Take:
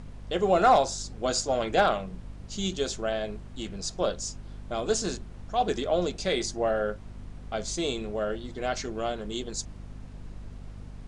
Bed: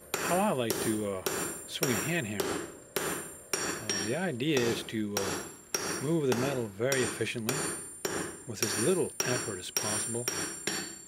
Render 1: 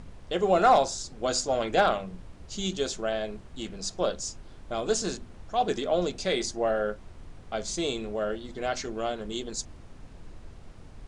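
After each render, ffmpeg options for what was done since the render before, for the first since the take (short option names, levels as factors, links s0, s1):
-af "bandreject=f=50:t=h:w=4,bandreject=f=100:t=h:w=4,bandreject=f=150:t=h:w=4,bandreject=f=200:t=h:w=4,bandreject=f=250:t=h:w=4"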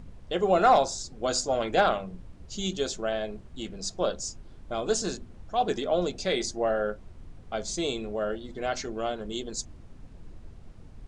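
-af "afftdn=nr=6:nf=-48"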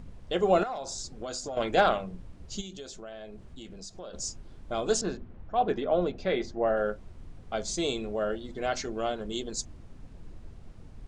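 -filter_complex "[0:a]asettb=1/sr,asplit=3[s0][s1][s2];[s0]atrim=end=0.634[s3];[s1]atrim=start=0.63:end=1.57,asetpts=PTS-STARTPTS,afade=t=in:d=0.004:c=qsin,afade=t=out:st=0.936:d=0.004:c=qsin,acompressor=threshold=0.0251:ratio=10:attack=3.2:release=140:knee=1:detection=peak[s4];[s2]atrim=start=1.566[s5];[s3][s4]acrossfade=d=0.004:c1=hsin:c2=qsin[s6];[s6][s5]acrossfade=d=0.004:c1=qsin:c2=hsin,asplit=3[s7][s8][s9];[s7]afade=t=out:st=2.6:d=0.02[s10];[s8]acompressor=threshold=0.00891:ratio=4:attack=3.2:release=140:knee=1:detection=peak,afade=t=in:st=2.6:d=0.02,afade=t=out:st=4.13:d=0.02[s11];[s9]afade=t=in:st=4.13:d=0.02[s12];[s10][s11][s12]amix=inputs=3:normalize=0,asettb=1/sr,asplit=3[s13][s14][s15];[s13]atrim=end=5.014[s16];[s14]atrim=start=5.01:end=6.77,asetpts=PTS-STARTPTS,afade=t=in:d=0.004:c=qsin,afade=t=out:st=1.756:d=0.004:c=qsin,lowpass=2300[s17];[s15]atrim=start=6.766[s18];[s16][s17]acrossfade=d=0.004:c1=hsin:c2=qsin[s19];[s19][s18]acrossfade=d=0.004:c1=qsin:c2=hsin"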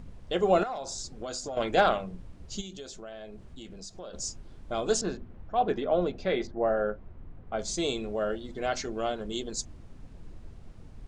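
-filter_complex "[0:a]asettb=1/sr,asplit=3[s0][s1][s2];[s0]atrim=end=6.474[s3];[s1]atrim=start=6.47:end=7.59,asetpts=PTS-STARTPTS,afade=t=in:d=0.004:c=qsin,afade=t=out:st=1.116:d=0.004:c=qsin,lowpass=1900[s4];[s2]atrim=start=7.586[s5];[s3][s4]acrossfade=d=0.004:c1=hsin:c2=qsin[s6];[s6][s5]acrossfade=d=0.004:c1=qsin:c2=hsin"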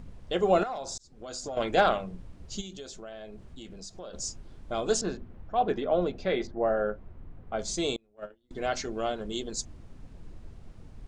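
-filter_complex "[0:a]asettb=1/sr,asplit=3[s0][s1][s2];[s0]atrim=end=7.964[s3];[s1]atrim=start=7.96:end=8.51,asetpts=PTS-STARTPTS,afade=t=in:d=0.004:c=qsin,afade=t=out:st=0.546:d=0.004:c=qsin,agate=range=0.0251:threshold=0.0447:ratio=16:release=100:detection=peak[s4];[s2]atrim=start=8.506[s5];[s3][s4]acrossfade=d=0.004:c1=hsin:c2=qsin[s6];[s6][s5]acrossfade=d=0.004:c1=qsin:c2=hsin,asplit=2[s7][s8];[s7]atrim=end=0.98,asetpts=PTS-STARTPTS,afade=t=out:st=0.976:d=0.004:c=hsin[s9];[s8]atrim=start=0.98,asetpts=PTS-STARTPTS,afade=t=in:d=0.48[s10];[s9][s10]concat=n=2:v=0:a=1"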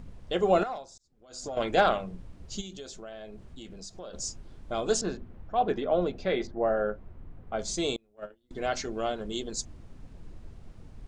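-filter_complex "[0:a]asplit=3[s0][s1][s2];[s0]atrim=end=0.87,asetpts=PTS-STARTPTS,afade=t=out:st=0.73:d=0.14:silence=0.188365[s3];[s1]atrim=start=0.87:end=1.29,asetpts=PTS-STARTPTS,volume=0.188[s4];[s2]atrim=start=1.29,asetpts=PTS-STARTPTS,afade=t=in:d=0.14:silence=0.188365[s5];[s3][s4][s5]concat=n=3:v=0:a=1"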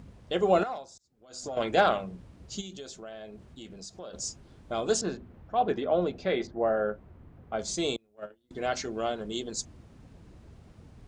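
-af "highpass=61"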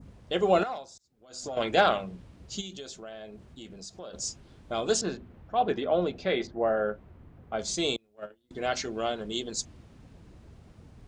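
-af "adynamicequalizer=threshold=0.00501:dfrequency=3200:dqfactor=0.82:tfrequency=3200:tqfactor=0.82:attack=5:release=100:ratio=0.375:range=2:mode=boostabove:tftype=bell"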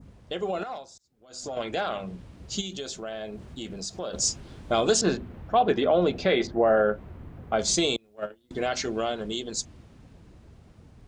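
-af "alimiter=limit=0.0891:level=0:latency=1:release=191,dynaudnorm=f=310:g=17:m=2.82"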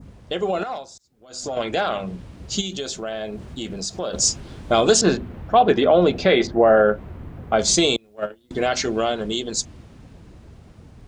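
-af "volume=2.11"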